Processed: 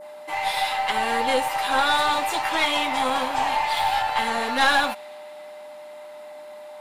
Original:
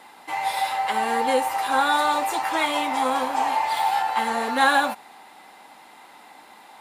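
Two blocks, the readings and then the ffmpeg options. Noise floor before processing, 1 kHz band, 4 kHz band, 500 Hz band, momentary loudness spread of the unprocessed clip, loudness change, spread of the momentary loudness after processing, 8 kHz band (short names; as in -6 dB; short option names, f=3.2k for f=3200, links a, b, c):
-49 dBFS, -1.0 dB, +4.5 dB, -0.5 dB, 6 LU, +0.5 dB, 21 LU, 0.0 dB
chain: -af "adynamicequalizer=threshold=0.0126:dfrequency=3100:dqfactor=0.8:tfrequency=3100:tqfactor=0.8:attack=5:release=100:ratio=0.375:range=3.5:mode=boostabove:tftype=bell,aeval=exprs='(tanh(3.16*val(0)+0.4)-tanh(0.4))/3.16':c=same,aeval=exprs='val(0)+0.0126*sin(2*PI*600*n/s)':c=same"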